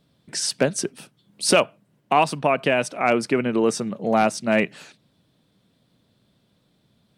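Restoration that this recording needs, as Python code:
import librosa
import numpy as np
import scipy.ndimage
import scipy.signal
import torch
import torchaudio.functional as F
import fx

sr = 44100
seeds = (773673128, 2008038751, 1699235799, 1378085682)

y = fx.fix_declip(x, sr, threshold_db=-7.0)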